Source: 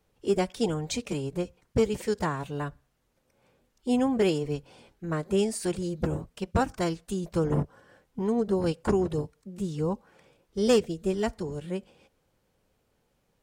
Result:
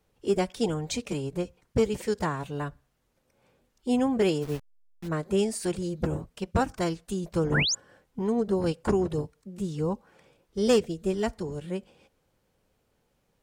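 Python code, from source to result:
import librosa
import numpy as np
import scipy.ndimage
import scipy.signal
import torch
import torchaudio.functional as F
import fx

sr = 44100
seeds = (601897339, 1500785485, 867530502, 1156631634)

y = fx.delta_hold(x, sr, step_db=-38.5, at=(4.41, 5.07), fade=0.02)
y = fx.spec_paint(y, sr, seeds[0], shape='rise', start_s=7.54, length_s=0.21, low_hz=1300.0, high_hz=7400.0, level_db=-26.0)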